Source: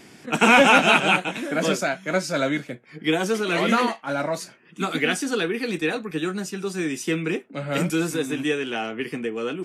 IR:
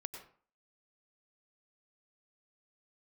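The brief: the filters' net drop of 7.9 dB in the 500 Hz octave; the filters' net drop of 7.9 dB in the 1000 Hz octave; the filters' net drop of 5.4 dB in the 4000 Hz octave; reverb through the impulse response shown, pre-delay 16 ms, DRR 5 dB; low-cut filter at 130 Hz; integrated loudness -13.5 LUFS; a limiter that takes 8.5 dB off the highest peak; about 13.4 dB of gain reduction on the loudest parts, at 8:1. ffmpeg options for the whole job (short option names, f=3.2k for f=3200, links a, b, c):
-filter_complex "[0:a]highpass=130,equalizer=f=500:t=o:g=-7.5,equalizer=f=1k:t=o:g=-8.5,equalizer=f=4k:t=o:g=-7,acompressor=threshold=-30dB:ratio=8,alimiter=level_in=3dB:limit=-24dB:level=0:latency=1,volume=-3dB,asplit=2[a][b];[1:a]atrim=start_sample=2205,adelay=16[c];[b][c]afir=irnorm=-1:irlink=0,volume=-2.5dB[d];[a][d]amix=inputs=2:normalize=0,volume=21.5dB"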